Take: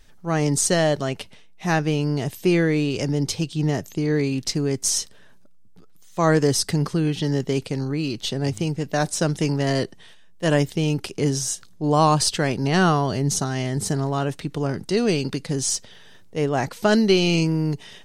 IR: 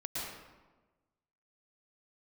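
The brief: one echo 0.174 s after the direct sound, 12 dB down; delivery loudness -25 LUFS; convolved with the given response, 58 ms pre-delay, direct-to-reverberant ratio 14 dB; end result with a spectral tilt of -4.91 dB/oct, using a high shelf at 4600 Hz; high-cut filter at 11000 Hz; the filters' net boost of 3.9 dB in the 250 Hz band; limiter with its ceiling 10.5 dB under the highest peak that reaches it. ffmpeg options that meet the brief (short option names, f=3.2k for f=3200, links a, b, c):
-filter_complex "[0:a]lowpass=11k,equalizer=f=250:t=o:g=5.5,highshelf=f=4.6k:g=5,alimiter=limit=-14.5dB:level=0:latency=1,aecho=1:1:174:0.251,asplit=2[a][b];[1:a]atrim=start_sample=2205,adelay=58[c];[b][c]afir=irnorm=-1:irlink=0,volume=-16.5dB[d];[a][d]amix=inputs=2:normalize=0,volume=-1.5dB"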